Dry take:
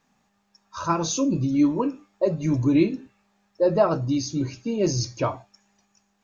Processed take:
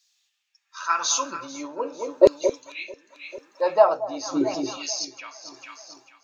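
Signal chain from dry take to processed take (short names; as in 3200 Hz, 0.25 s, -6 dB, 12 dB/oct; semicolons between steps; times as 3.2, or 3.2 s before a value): LFO high-pass saw down 0.44 Hz 330–4600 Hz; echo with dull and thin repeats by turns 0.222 s, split 910 Hz, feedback 61%, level -8 dB; tremolo 0.86 Hz, depth 72%; gain +5 dB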